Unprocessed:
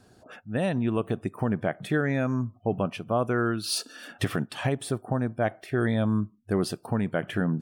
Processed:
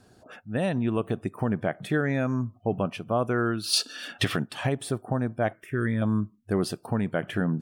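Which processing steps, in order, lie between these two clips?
0:03.73–0:04.37: parametric band 3,500 Hz +9 dB 1.9 octaves
0:05.53–0:06.02: phaser with its sweep stopped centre 1,800 Hz, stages 4

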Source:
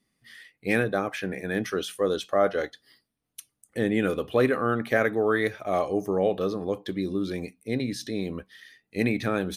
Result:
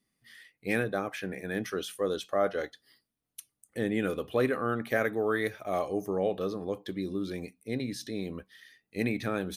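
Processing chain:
high-shelf EQ 11,000 Hz +6 dB, from 0:04.90 +12 dB, from 0:06.05 +5.5 dB
level −5 dB

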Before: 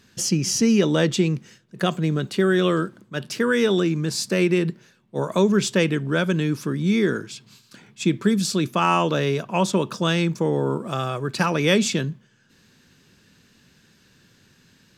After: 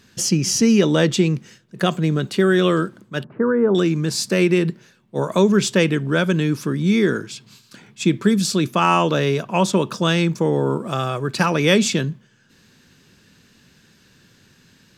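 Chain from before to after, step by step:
0:03.24–0:03.75: inverse Chebyshev low-pass filter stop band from 5,400 Hz, stop band 70 dB
level +3 dB

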